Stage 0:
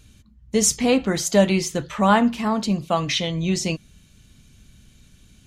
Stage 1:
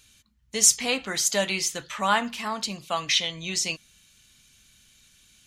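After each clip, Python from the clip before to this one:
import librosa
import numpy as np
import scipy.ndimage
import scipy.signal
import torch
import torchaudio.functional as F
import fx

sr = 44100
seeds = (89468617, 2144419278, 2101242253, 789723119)

y = fx.tilt_shelf(x, sr, db=-9.5, hz=740.0)
y = y * 10.0 ** (-7.0 / 20.0)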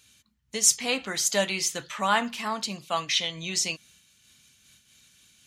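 y = scipy.signal.sosfilt(scipy.signal.butter(2, 82.0, 'highpass', fs=sr, output='sos'), x)
y = fx.am_noise(y, sr, seeds[0], hz=5.7, depth_pct=60)
y = y * 10.0 ** (2.0 / 20.0)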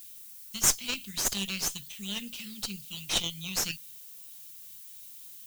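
y = scipy.signal.sosfilt(scipy.signal.cheby1(3, 1.0, [200.0, 2800.0], 'bandstop', fs=sr, output='sos'), x)
y = fx.cheby_harmonics(y, sr, harmonics=(8,), levels_db=(-15,), full_scale_db=-5.5)
y = fx.dmg_noise_colour(y, sr, seeds[1], colour='violet', level_db=-44.0)
y = y * 10.0 ** (-3.5 / 20.0)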